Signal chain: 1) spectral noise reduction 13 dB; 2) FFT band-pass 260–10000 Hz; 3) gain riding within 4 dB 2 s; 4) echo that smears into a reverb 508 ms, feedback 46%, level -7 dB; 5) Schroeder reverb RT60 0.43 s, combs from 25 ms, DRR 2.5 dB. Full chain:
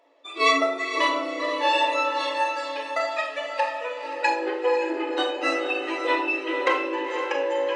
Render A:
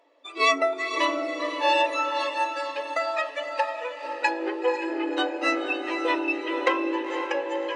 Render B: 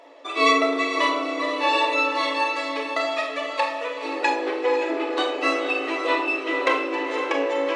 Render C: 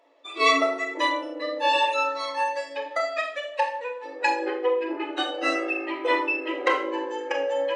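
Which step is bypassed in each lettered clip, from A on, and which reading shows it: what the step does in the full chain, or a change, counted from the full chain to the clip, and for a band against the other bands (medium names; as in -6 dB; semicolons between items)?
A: 5, crest factor change +1.5 dB; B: 1, 250 Hz band +2.5 dB; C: 4, echo-to-direct 0.0 dB to -2.5 dB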